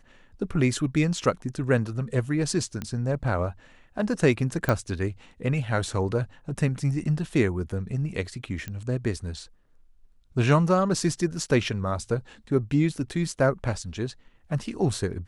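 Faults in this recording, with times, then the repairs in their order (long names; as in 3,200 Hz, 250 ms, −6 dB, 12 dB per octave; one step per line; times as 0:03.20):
0:02.82: click −18 dBFS
0:04.69: click −11 dBFS
0:08.68: click −20 dBFS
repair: click removal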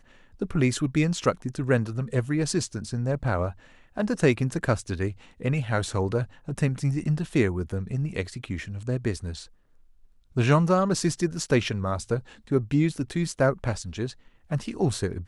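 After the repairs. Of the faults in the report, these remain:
none of them is left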